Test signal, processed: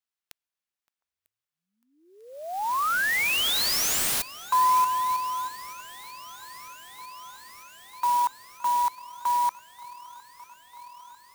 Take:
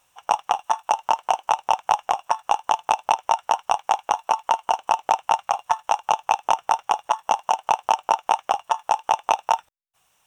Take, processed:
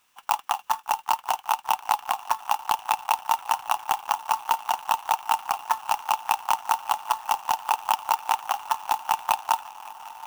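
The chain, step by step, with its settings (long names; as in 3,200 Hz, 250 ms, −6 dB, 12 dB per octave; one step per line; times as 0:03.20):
inverse Chebyshev high-pass filter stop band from 150 Hz, stop band 80 dB
on a send: feedback echo with a long and a short gap by turns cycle 947 ms, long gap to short 1.5 to 1, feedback 76%, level −20.5 dB
on the sum: converter with an unsteady clock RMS 0.027 ms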